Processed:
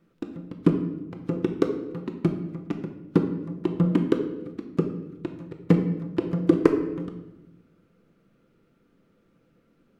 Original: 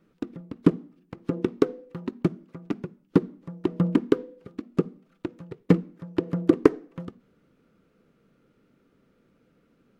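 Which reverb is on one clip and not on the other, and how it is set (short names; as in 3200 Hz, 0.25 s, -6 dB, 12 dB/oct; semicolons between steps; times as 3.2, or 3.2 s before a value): shoebox room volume 490 m³, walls mixed, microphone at 0.77 m; gain -1.5 dB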